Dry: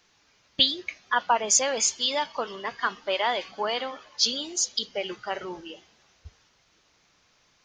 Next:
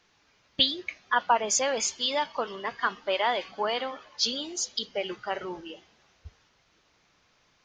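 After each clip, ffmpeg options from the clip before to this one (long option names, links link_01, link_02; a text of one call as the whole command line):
ffmpeg -i in.wav -af "highshelf=frequency=6300:gain=-10.5" out.wav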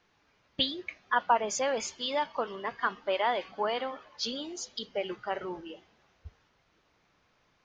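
ffmpeg -i in.wav -af "highshelf=frequency=3400:gain=-10.5,volume=-1dB" out.wav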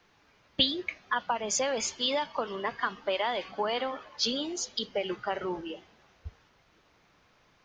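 ffmpeg -i in.wav -filter_complex "[0:a]acrossover=split=190|3000[link_01][link_02][link_03];[link_02]acompressor=threshold=-32dB:ratio=6[link_04];[link_01][link_04][link_03]amix=inputs=3:normalize=0,volume=5dB" out.wav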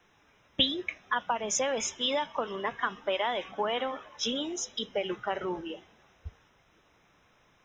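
ffmpeg -i in.wav -af "asuperstop=centerf=4500:order=20:qfactor=4.2" out.wav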